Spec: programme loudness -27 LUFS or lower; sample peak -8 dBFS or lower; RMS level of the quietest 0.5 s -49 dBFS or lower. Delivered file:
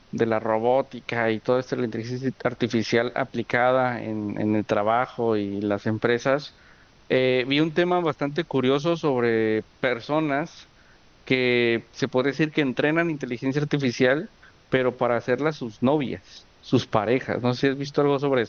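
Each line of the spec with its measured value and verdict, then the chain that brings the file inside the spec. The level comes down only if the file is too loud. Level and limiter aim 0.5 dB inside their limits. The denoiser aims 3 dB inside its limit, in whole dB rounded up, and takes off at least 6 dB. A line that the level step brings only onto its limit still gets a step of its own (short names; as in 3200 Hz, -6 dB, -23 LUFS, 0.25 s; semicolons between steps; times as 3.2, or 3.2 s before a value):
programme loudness -24.0 LUFS: fail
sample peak -5.5 dBFS: fail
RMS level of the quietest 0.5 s -54 dBFS: OK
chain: gain -3.5 dB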